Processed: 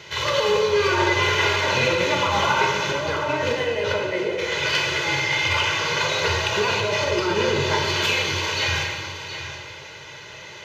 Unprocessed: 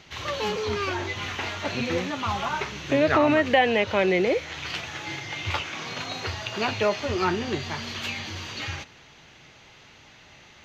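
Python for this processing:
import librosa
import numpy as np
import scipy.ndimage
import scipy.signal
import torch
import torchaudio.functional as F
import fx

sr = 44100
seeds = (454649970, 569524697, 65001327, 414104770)

p1 = 10.0 ** (-25.0 / 20.0) * np.tanh(x / 10.0 ** (-25.0 / 20.0))
p2 = x + (p1 * 10.0 ** (-6.5 / 20.0))
p3 = p2 + 0.87 * np.pad(p2, (int(2.0 * sr / 1000.0), 0))[:len(p2)]
p4 = fx.over_compress(p3, sr, threshold_db=-24.0, ratio=-1.0)
p5 = scipy.signal.sosfilt(scipy.signal.butter(2, 130.0, 'highpass', fs=sr, output='sos'), p4)
p6 = p5 + 10.0 ** (-10.5 / 20.0) * np.pad(p5, (int(719 * sr / 1000.0), 0))[:len(p5)]
y = fx.rev_plate(p6, sr, seeds[0], rt60_s=1.8, hf_ratio=0.85, predelay_ms=0, drr_db=0.0)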